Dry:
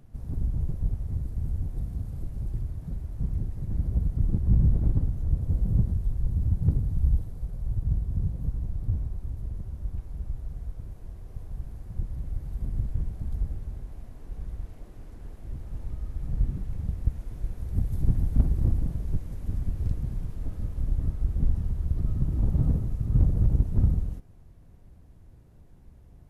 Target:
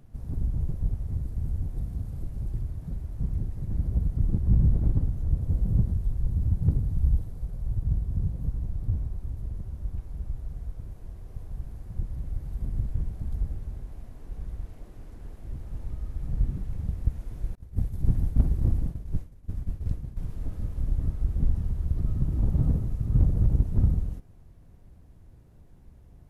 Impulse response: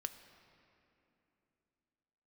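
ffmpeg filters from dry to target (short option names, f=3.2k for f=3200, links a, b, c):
-filter_complex "[0:a]asettb=1/sr,asplit=3[a][b][c];[a]atrim=end=17.554[d];[b]atrim=start=17.55:end=20.17,asetpts=PTS-STARTPTS,afade=t=in:d=0.004:c=qsin,afade=t=out:st=2.616:d=0.004:c=qsin,agate=range=-33dB:threshold=-22dB:ratio=3:detection=peak[e];[c]atrim=start=20.166[f];[d][e]acrossfade=d=0.004:c1=hsin:c2=qsin[g];[g][f]acrossfade=d=0.004:c1=qsin:c2=hsin"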